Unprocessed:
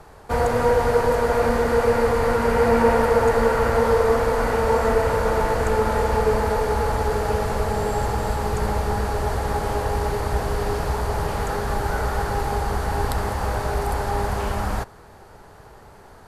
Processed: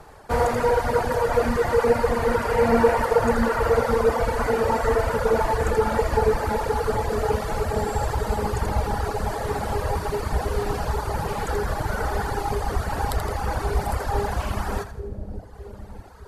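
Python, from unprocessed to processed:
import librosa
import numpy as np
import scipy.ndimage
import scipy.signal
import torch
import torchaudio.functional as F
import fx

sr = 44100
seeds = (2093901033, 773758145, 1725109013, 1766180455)

p1 = x + fx.echo_split(x, sr, split_hz=530.0, low_ms=612, high_ms=82, feedback_pct=52, wet_db=-4.5, dry=0)
y = fx.dereverb_blind(p1, sr, rt60_s=1.6)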